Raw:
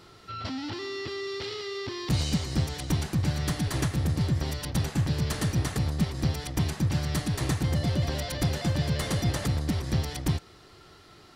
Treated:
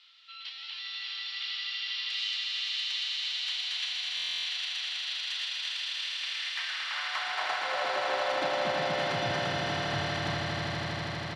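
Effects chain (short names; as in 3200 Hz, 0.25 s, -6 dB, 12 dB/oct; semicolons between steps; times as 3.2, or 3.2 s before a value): HPF 81 Hz; three-band isolator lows -19 dB, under 580 Hz, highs -19 dB, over 4100 Hz; high-pass sweep 3200 Hz -> 110 Hz, 6.01–9.29; air absorption 52 m; doubler 31 ms -11 dB; on a send: swelling echo 80 ms, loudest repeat 8, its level -5 dB; on the sum: stuck buffer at 4.15, samples 1024, times 12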